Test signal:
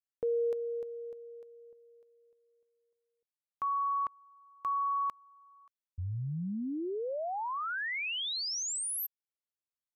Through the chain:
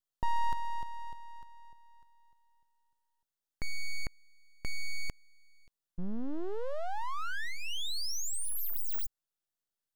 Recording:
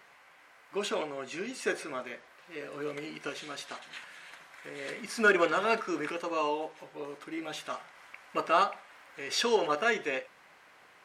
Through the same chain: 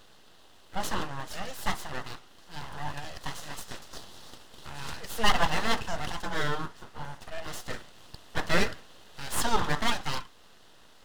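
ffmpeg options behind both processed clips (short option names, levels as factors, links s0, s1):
-af "aeval=exprs='abs(val(0))':c=same,equalizer=f=2300:t=o:w=0.25:g=-10.5,volume=1.68"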